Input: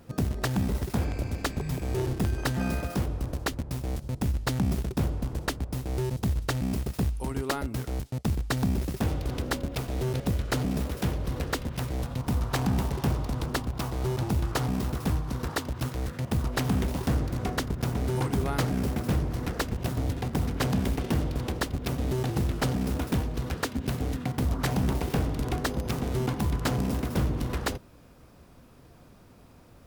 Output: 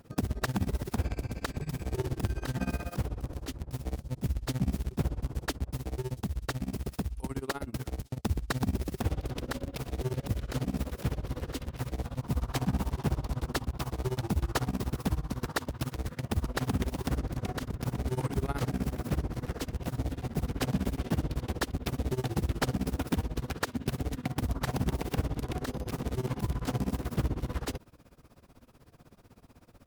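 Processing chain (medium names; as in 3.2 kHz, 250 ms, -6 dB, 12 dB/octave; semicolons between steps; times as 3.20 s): 5.84–8.17 s: compression, threshold -27 dBFS, peak gain reduction 5.5 dB; tremolo 16 Hz, depth 92%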